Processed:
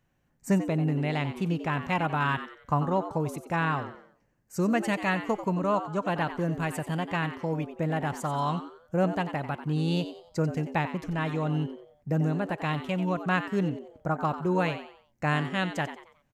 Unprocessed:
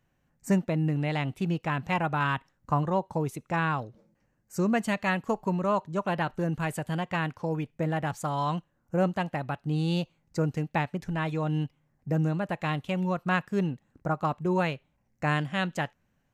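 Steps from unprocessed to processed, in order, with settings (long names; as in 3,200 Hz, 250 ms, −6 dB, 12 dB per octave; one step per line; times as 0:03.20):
echo with shifted repeats 91 ms, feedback 36%, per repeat +110 Hz, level −11.5 dB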